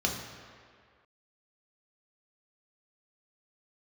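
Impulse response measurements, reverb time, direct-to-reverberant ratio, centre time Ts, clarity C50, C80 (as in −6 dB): 2.0 s, −0.5 dB, 52 ms, 4.5 dB, 6.5 dB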